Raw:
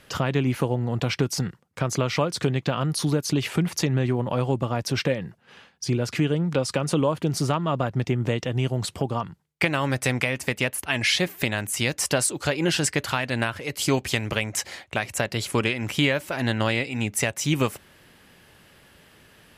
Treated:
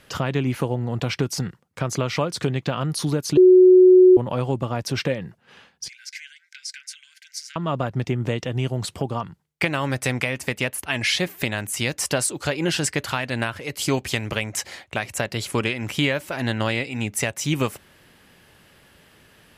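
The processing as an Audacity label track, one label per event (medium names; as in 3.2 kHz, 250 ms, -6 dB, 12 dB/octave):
3.370000	4.170000	bleep 368 Hz -7.5 dBFS
5.880000	7.560000	rippled Chebyshev high-pass 1.5 kHz, ripple 9 dB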